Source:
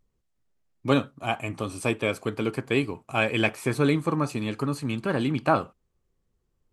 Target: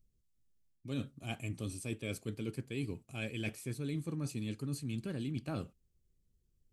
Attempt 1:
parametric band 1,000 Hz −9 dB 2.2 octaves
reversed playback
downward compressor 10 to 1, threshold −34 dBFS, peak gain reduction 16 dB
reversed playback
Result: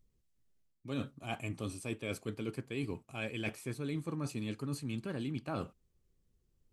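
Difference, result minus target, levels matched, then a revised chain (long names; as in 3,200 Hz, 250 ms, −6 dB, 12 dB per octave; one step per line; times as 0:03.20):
1,000 Hz band +6.0 dB
parametric band 1,000 Hz −21 dB 2.2 octaves
reversed playback
downward compressor 10 to 1, threshold −34 dBFS, peak gain reduction 13 dB
reversed playback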